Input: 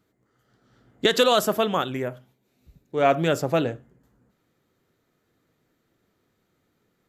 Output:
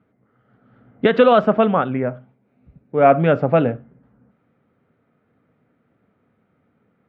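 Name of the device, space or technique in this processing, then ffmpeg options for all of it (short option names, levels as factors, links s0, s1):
bass cabinet: -filter_complex "[0:a]highpass=83,equalizer=f=230:t=q:w=4:g=4,equalizer=f=350:t=q:w=4:g=-8,equalizer=f=990:t=q:w=4:g=-4,equalizer=f=1800:t=q:w=4:g=-6,lowpass=f=2200:w=0.5412,lowpass=f=2200:w=1.3066,asettb=1/sr,asplit=3[s0][s1][s2];[s0]atrim=end=1.714[s3];[s1]atrim=start=1.71:end=3.2,asetpts=PTS-STARTPTS,afade=t=in:d=0.004:c=qsin,afade=t=out:st=1.486:d=0.004:c=qsin,equalizer=f=3300:w=1.5:g=-4.5[s4];[s2]atrim=start=3.196[s5];[s3][s4]acrossfade=d=0.004:c1=hsin:c2=qsin[s6];[s6][s5]acrossfade=d=0.004:c1=qsin:c2=hsin,volume=2.51"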